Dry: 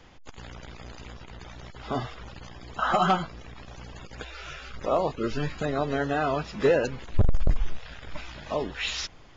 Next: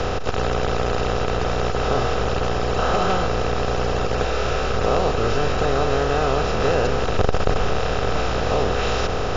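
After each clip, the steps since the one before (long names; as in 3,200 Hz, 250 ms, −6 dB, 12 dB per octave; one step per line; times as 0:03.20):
compressor on every frequency bin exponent 0.2
level −4.5 dB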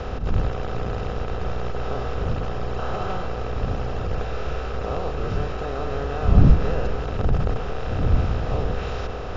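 wind on the microphone 93 Hz −16 dBFS
low-pass filter 3,100 Hz 6 dB per octave
spring reverb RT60 3.8 s, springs 44/50 ms, chirp 75 ms, DRR 11 dB
level −8.5 dB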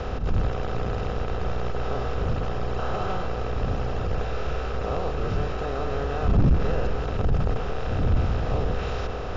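soft clipping −13.5 dBFS, distortion −10 dB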